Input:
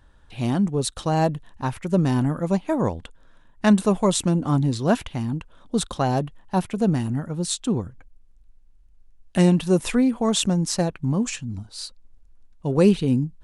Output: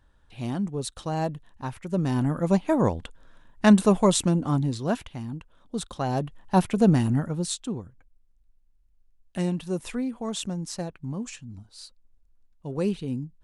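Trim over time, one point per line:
1.89 s -7 dB
2.50 s +0.5 dB
4.02 s +0.5 dB
5.13 s -8 dB
5.89 s -8 dB
6.56 s +2 dB
7.21 s +2 dB
7.80 s -10 dB

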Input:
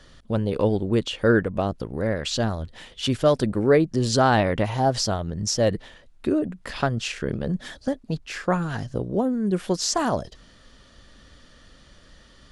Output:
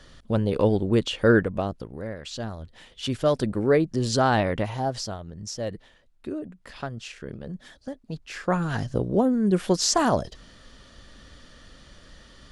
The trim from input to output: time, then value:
1.39 s +0.5 dB
2.16 s -10.5 dB
3.38 s -2.5 dB
4.52 s -2.5 dB
5.24 s -10 dB
7.89 s -10 dB
8.77 s +2 dB

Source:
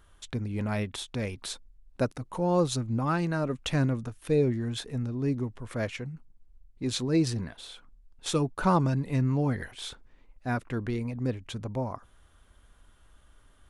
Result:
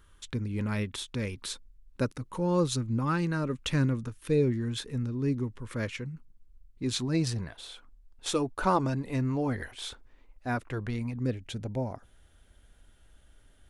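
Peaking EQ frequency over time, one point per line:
peaking EQ -14 dB 0.36 oct
6.85 s 700 Hz
7.68 s 160 Hz
10.61 s 160 Hz
11.38 s 1.1 kHz

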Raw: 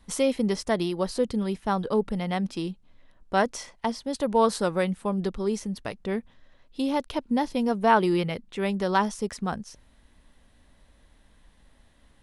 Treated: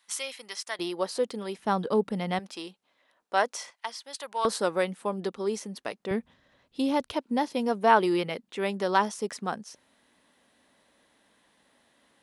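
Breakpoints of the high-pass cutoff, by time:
1.4 kHz
from 0.79 s 390 Hz
from 1.59 s 170 Hz
from 2.39 s 540 Hz
from 3.70 s 1.2 kHz
from 4.45 s 300 Hz
from 6.11 s 91 Hz
from 7.13 s 270 Hz

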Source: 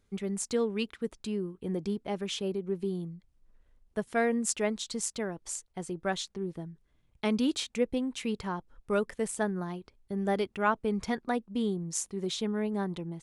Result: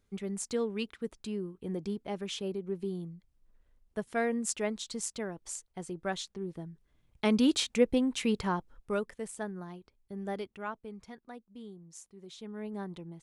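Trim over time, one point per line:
6.45 s -3 dB
7.57 s +3.5 dB
8.54 s +3.5 dB
9.18 s -7.5 dB
10.35 s -7.5 dB
11.06 s -16.5 dB
12.26 s -16.5 dB
12.70 s -7 dB

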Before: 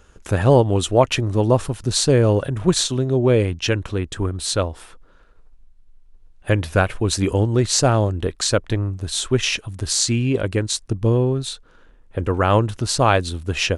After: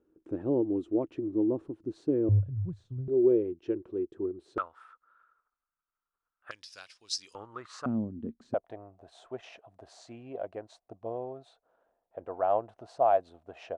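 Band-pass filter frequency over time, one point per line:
band-pass filter, Q 7.8
320 Hz
from 2.29 s 100 Hz
from 3.08 s 360 Hz
from 4.58 s 1.3 kHz
from 6.51 s 5.1 kHz
from 7.35 s 1.2 kHz
from 7.86 s 230 Hz
from 8.54 s 690 Hz

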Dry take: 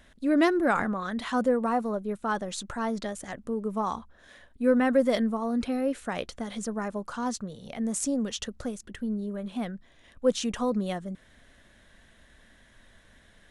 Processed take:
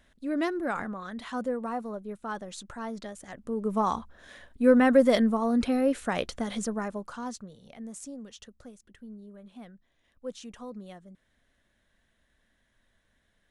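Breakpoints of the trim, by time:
3.26 s -6.5 dB
3.73 s +3 dB
6.54 s +3 dB
7.31 s -6.5 dB
8.18 s -14 dB

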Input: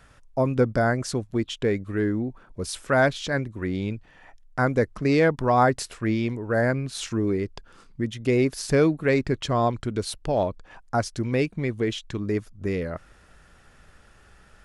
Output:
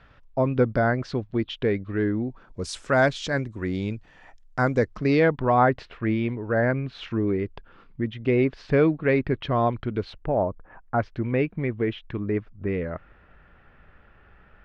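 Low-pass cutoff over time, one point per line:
low-pass 24 dB/octave
2.15 s 4 kHz
2.66 s 8 kHz
4.68 s 8 kHz
5.43 s 3.2 kHz
10.12 s 3.2 kHz
10.46 s 1.3 kHz
11.03 s 2.7 kHz

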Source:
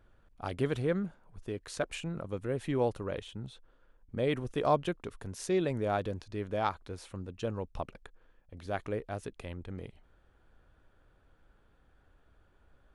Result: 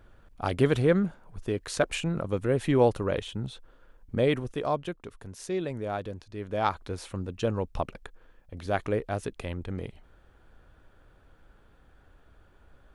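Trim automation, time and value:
4.15 s +8 dB
4.69 s -1.5 dB
6.34 s -1.5 dB
6.78 s +7 dB

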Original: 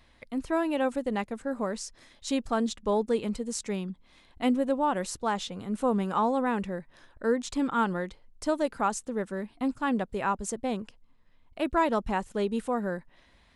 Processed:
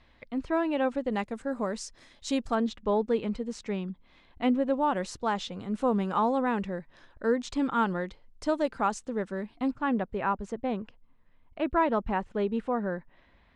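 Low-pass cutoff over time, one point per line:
4 kHz
from 1.11 s 8.2 kHz
from 2.55 s 3.5 kHz
from 4.74 s 5.7 kHz
from 9.71 s 2.6 kHz

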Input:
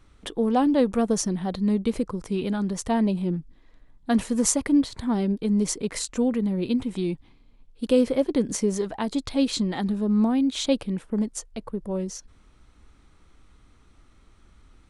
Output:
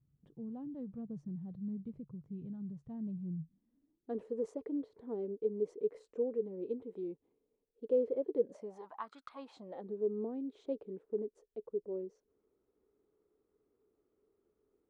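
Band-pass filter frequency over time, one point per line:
band-pass filter, Q 8.7
3.35 s 140 Hz
4.15 s 440 Hz
8.36 s 440 Hz
9.19 s 1.5 kHz
9.90 s 420 Hz

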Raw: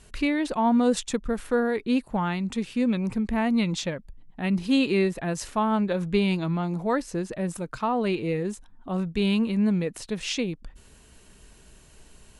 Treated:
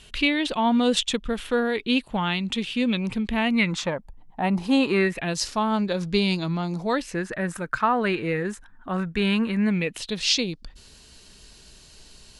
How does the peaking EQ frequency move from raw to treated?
peaking EQ +14.5 dB 0.96 oct
3.43 s 3.2 kHz
3.96 s 830 Hz
4.80 s 830 Hz
5.44 s 5 kHz
6.84 s 5 kHz
7.24 s 1.6 kHz
9.52 s 1.6 kHz
10.25 s 4.5 kHz

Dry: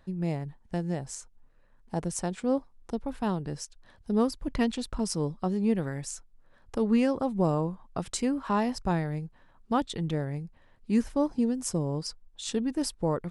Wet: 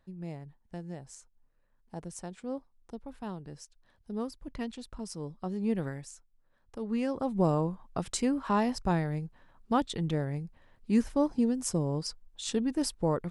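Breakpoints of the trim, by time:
5.18 s -10 dB
5.87 s -2 dB
6.12 s -11 dB
6.76 s -11 dB
7.38 s -0.5 dB

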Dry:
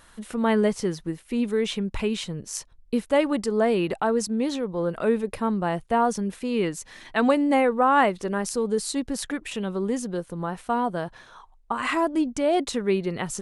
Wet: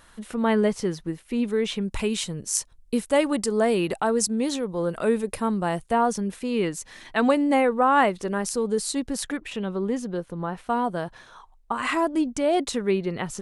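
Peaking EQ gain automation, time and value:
peaking EQ 9.1 kHz 1.4 oct
-1.5 dB
from 1.81 s +9.5 dB
from 5.93 s +2 dB
from 9.37 s -7.5 dB
from 10.68 s +2 dB
from 12.91 s -5 dB

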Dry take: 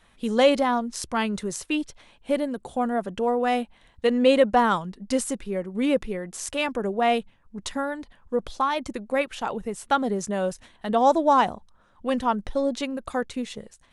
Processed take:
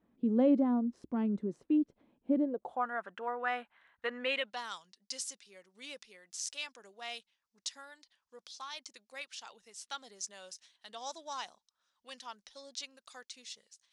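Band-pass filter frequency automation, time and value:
band-pass filter, Q 2.4
2.37 s 270 Hz
2.88 s 1.5 kHz
4.19 s 1.5 kHz
4.64 s 5.3 kHz

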